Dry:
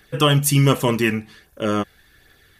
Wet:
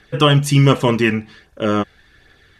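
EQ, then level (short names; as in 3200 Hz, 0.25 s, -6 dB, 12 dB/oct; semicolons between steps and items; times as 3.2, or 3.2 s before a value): Bessel low-pass 4900 Hz, order 2; +3.5 dB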